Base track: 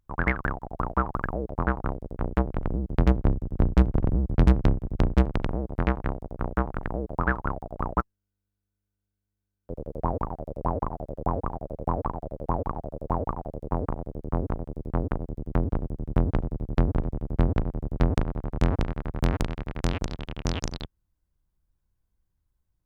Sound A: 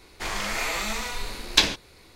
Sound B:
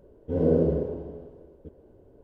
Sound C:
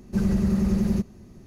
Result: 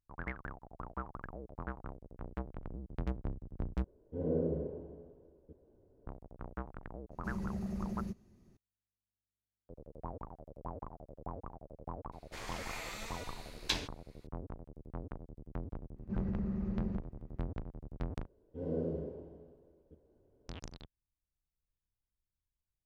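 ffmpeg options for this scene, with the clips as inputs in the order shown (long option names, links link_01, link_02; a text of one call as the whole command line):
ffmpeg -i bed.wav -i cue0.wav -i cue1.wav -i cue2.wav -filter_complex "[2:a]asplit=2[link_01][link_02];[3:a]asplit=2[link_03][link_04];[0:a]volume=-16.5dB[link_05];[link_01]lowpass=frequency=1300:poles=1[link_06];[link_04]lowpass=1800[link_07];[link_02]asplit=2[link_08][link_09];[link_09]adelay=37,volume=-14dB[link_10];[link_08][link_10]amix=inputs=2:normalize=0[link_11];[link_05]asplit=3[link_12][link_13][link_14];[link_12]atrim=end=3.844[link_15];[link_06]atrim=end=2.23,asetpts=PTS-STARTPTS,volume=-11dB[link_16];[link_13]atrim=start=6.066:end=18.264[link_17];[link_11]atrim=end=2.23,asetpts=PTS-STARTPTS,volume=-14.5dB[link_18];[link_14]atrim=start=20.486[link_19];[link_03]atrim=end=1.46,asetpts=PTS-STARTPTS,volume=-16.5dB,afade=type=in:duration=0.004:curve=hsin,afade=type=out:start_time=1.456:duration=0.004:curve=hsin,adelay=7110[link_20];[1:a]atrim=end=2.15,asetpts=PTS-STARTPTS,volume=-15.5dB,afade=type=in:duration=0.004:curve=hsin,afade=type=out:start_time=2.146:duration=0.004:curve=hsin,adelay=12120[link_21];[link_07]atrim=end=1.46,asetpts=PTS-STARTPTS,volume=-14.5dB,afade=type=in:duration=0.004:curve=hsin,afade=type=out:start_time=1.456:duration=0.004:curve=hsin,adelay=15960[link_22];[link_15][link_16]acrossfade=duration=0.004:curve1=hsin:curve2=hsin[link_23];[link_23][link_17]acrossfade=duration=0.004:curve1=hsin:curve2=hsin[link_24];[link_24][link_18]acrossfade=duration=0.004:curve1=hsin:curve2=hsin[link_25];[link_25][link_19]acrossfade=duration=0.004:curve1=hsin:curve2=hsin[link_26];[link_26][link_20][link_21][link_22]amix=inputs=4:normalize=0" out.wav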